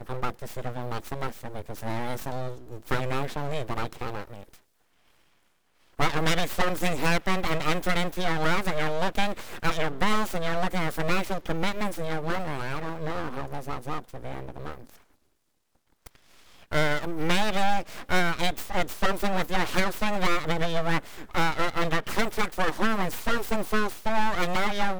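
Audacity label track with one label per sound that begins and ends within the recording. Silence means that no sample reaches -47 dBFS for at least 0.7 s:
5.980000	15.010000	sound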